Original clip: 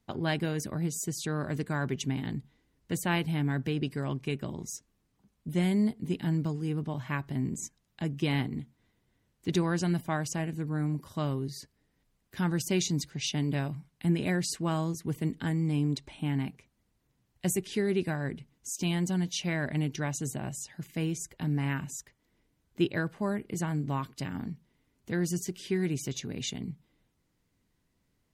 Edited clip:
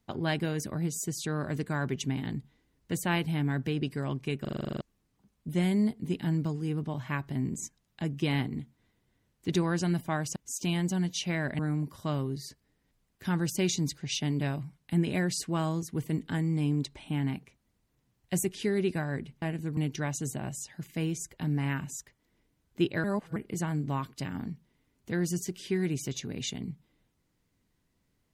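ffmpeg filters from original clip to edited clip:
-filter_complex "[0:a]asplit=17[a][b][c][d][e][f][g][h][i][j][k][l][m][n][o][p][q];[a]atrim=end=4.452[r];[b]atrim=start=4.408:end=4.452[s];[c]atrim=start=4.408:end=4.452[t];[d]atrim=start=4.408:end=4.452[u];[e]atrim=start=4.408:end=4.452[v];[f]atrim=start=4.408:end=4.452[w];[g]atrim=start=4.408:end=4.452[x];[h]atrim=start=4.408:end=4.452[y];[i]atrim=start=4.408:end=4.452[z];[j]atrim=start=4.408:end=4.452[aa];[k]atrim=start=4.808:end=10.362[ab];[l]atrim=start=18.538:end=19.772[ac];[m]atrim=start=10.708:end=18.542[ad];[n]atrim=start=10.358:end=10.712[ae];[o]atrim=start=19.768:end=23.042[af];[p]atrim=start=23.038:end=23.362,asetpts=PTS-STARTPTS,areverse[ag];[q]atrim=start=23.358[ah];[r][s]acrossfade=d=0.004:c1=hsin:c2=hsin[ai];[ai][t]acrossfade=d=0.004:c1=hsin:c2=hsin[aj];[aj][u]acrossfade=d=0.004:c1=hsin:c2=hsin[ak];[ak][v]acrossfade=d=0.004:c1=hsin:c2=hsin[al];[al][w]acrossfade=d=0.004:c1=hsin:c2=hsin[am];[am][x]acrossfade=d=0.004:c1=hsin:c2=hsin[an];[an][y]acrossfade=d=0.004:c1=hsin:c2=hsin[ao];[ao][z]acrossfade=d=0.004:c1=hsin:c2=hsin[ap];[ap][aa]acrossfade=d=0.004:c1=hsin:c2=hsin[aq];[aq][ab]acrossfade=d=0.004:c1=hsin:c2=hsin[ar];[ar][ac]acrossfade=d=0.004:c1=hsin:c2=hsin[as];[as][ad]acrossfade=d=0.004:c1=hsin:c2=hsin[at];[at][ae]acrossfade=d=0.004:c1=hsin:c2=hsin[au];[au][af]acrossfade=d=0.004:c1=hsin:c2=hsin[av];[av][ag]acrossfade=d=0.004:c1=hsin:c2=hsin[aw];[aw][ah]acrossfade=d=0.004:c1=hsin:c2=hsin"

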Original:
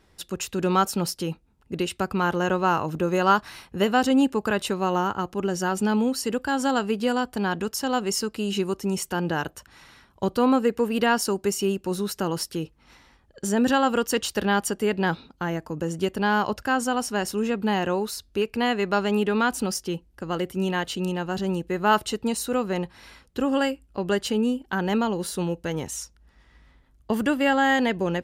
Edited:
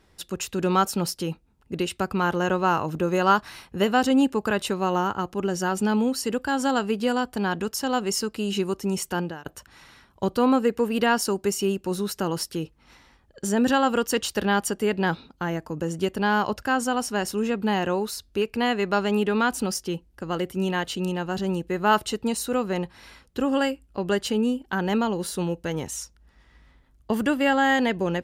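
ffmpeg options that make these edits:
-filter_complex "[0:a]asplit=2[a][b];[a]atrim=end=9.46,asetpts=PTS-STARTPTS,afade=t=out:st=9.2:d=0.26:c=qua:silence=0.125893[c];[b]atrim=start=9.46,asetpts=PTS-STARTPTS,afade=t=in:d=0.004:c=hsin:silence=0.125893[d];[c][d]concat=n=2:v=0:a=1"

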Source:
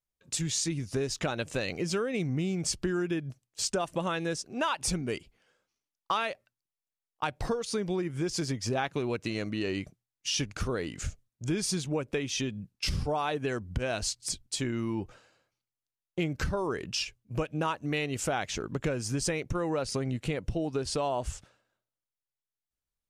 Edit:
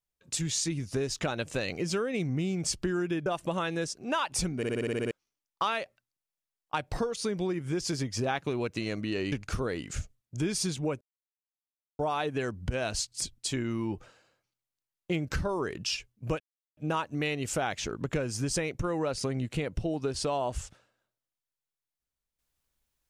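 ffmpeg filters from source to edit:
-filter_complex "[0:a]asplit=15[a][b][c][d][e][f][g][h][i][j][k][l][m][n][o];[a]atrim=end=3.262[p];[b]atrim=start=3.748:end=5.122[q];[c]atrim=start=5.058:end=5.122[r];[d]atrim=start=5.058:end=5.122[s];[e]atrim=start=5.058:end=5.122[t];[f]atrim=start=5.058:end=5.122[u];[g]atrim=start=5.058:end=5.122[v];[h]atrim=start=5.058:end=5.122[w];[i]atrim=start=5.058:end=5.122[x];[j]atrim=start=5.058:end=5.122[y];[k]atrim=start=5.598:end=9.812[z];[l]atrim=start=10.398:end=12.09,asetpts=PTS-STARTPTS,afade=t=out:st=1.688:d=0.004:c=hsin[aa];[m]atrim=start=12.09:end=13.07,asetpts=PTS-STARTPTS,volume=0[ab];[n]atrim=start=13.07:end=17.48,asetpts=PTS-STARTPTS,afade=t=in:d=0.004:c=hsin,afade=t=out:st=4.406:d=0.004:c=hsin,apad=pad_dur=0.37[ac];[o]atrim=start=17.48,asetpts=PTS-STARTPTS,afade=t=in:d=0.004:c=hsin[ad];[p][q]acrossfade=d=0.004:c1=hsin:c2=hsin[ae];[ae][r]acrossfade=d=0.004:c1=hsin:c2=hsin[af];[af][s]acrossfade=d=0.004:c1=hsin:c2=hsin[ag];[ag][t]acrossfade=d=0.004:c1=hsin:c2=hsin[ah];[ah][u]acrossfade=d=0.004:c1=hsin:c2=hsin[ai];[ai][v]acrossfade=d=0.004:c1=hsin:c2=hsin[aj];[aj][w]acrossfade=d=0.004:c1=hsin:c2=hsin[ak];[ak][x]acrossfade=d=0.004:c1=hsin:c2=hsin[al];[al][y]acrossfade=d=0.004:c1=hsin:c2=hsin[am];[am][z]acrossfade=d=0.004:c1=hsin:c2=hsin[an];[aa][ab][ac][ad]concat=n=4:v=0:a=1[ao];[an][ao]acrossfade=d=0.004:c1=hsin:c2=hsin"

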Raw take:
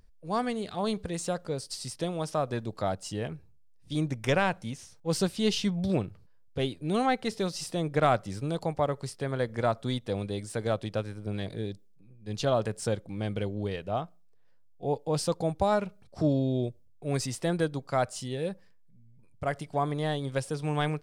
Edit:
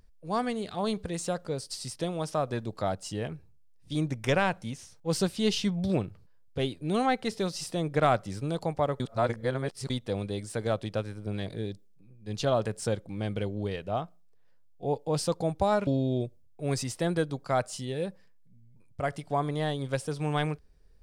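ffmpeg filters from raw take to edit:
-filter_complex "[0:a]asplit=4[a][b][c][d];[a]atrim=end=9.002[e];[b]atrim=start=8.998:end=9.902,asetpts=PTS-STARTPTS,areverse[f];[c]atrim=start=9.898:end=15.872[g];[d]atrim=start=16.298[h];[e][f]acrossfade=d=0.004:c1=hsin:c2=hsin[i];[i][g]acrossfade=d=0.004:c1=hsin:c2=hsin[j];[j][h]acrossfade=d=0.004:c1=hsin:c2=hsin"

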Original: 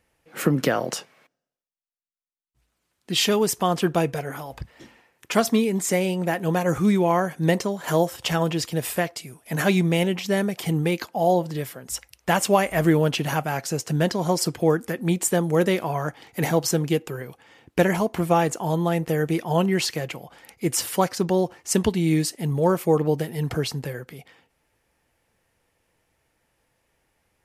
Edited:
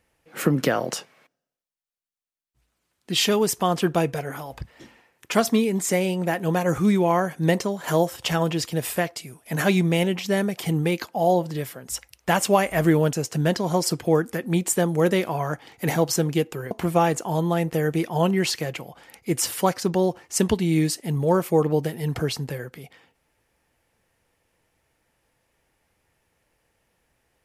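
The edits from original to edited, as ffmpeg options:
-filter_complex "[0:a]asplit=3[a][b][c];[a]atrim=end=13.132[d];[b]atrim=start=13.678:end=17.262[e];[c]atrim=start=18.058[f];[d][e]acrossfade=d=0.004:c1=hsin:c2=hsin[g];[g][f]acrossfade=d=0.004:c1=hsin:c2=hsin"

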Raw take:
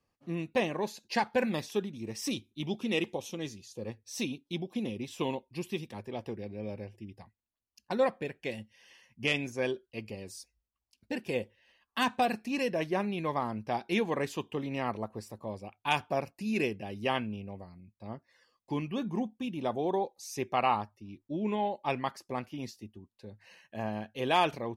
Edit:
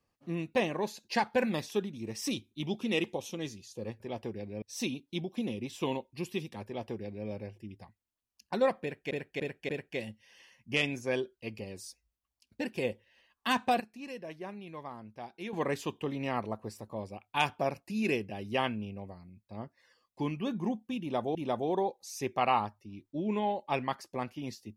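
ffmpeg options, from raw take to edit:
-filter_complex "[0:a]asplit=9[a][b][c][d][e][f][g][h][i];[a]atrim=end=4.002[j];[b]atrim=start=6.028:end=6.652[k];[c]atrim=start=3.998:end=8.492[l];[d]atrim=start=8.198:end=8.492[m];[e]atrim=start=8.198:end=8.492[n];[f]atrim=start=8.198:end=12.312[o];[g]atrim=start=12.308:end=14.042,asetpts=PTS-STARTPTS,volume=-11.5dB[p];[h]atrim=start=14.038:end=19.862[q];[i]atrim=start=19.508[r];[j][k]acrossfade=d=0.004:c1=hsin:c2=hsin[s];[s][l]acrossfade=d=0.004:c1=hsin:c2=hsin[t];[t][m]acrossfade=d=0.004:c1=hsin:c2=hsin[u];[u][n]acrossfade=d=0.004:c1=hsin:c2=hsin[v];[v][o]acrossfade=d=0.004:c1=hsin:c2=hsin[w];[w][p]acrossfade=d=0.004:c1=hsin:c2=hsin[x];[x][q]acrossfade=d=0.004:c1=hsin:c2=hsin[y];[y][r]acrossfade=d=0.004:c1=hsin:c2=hsin"

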